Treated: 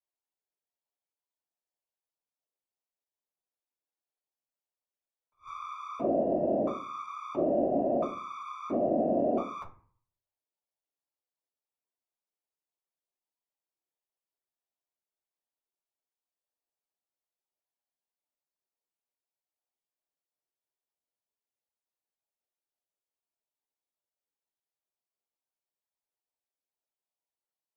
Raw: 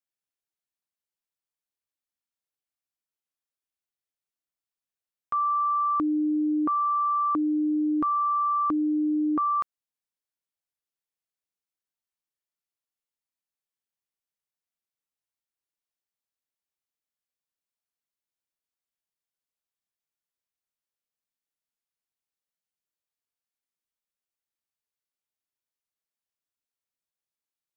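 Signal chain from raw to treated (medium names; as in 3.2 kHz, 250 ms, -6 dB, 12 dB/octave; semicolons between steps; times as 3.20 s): single-diode clipper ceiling -31.5 dBFS; high-order bell 600 Hz +11.5 dB; inharmonic resonator 73 Hz, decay 0.38 s, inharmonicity 0.008; de-hum 81.51 Hz, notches 33; whisper effect; on a send at -9 dB: reverberation RT60 0.40 s, pre-delay 3 ms; on the sum: attacks held to a fixed rise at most 310 dB/s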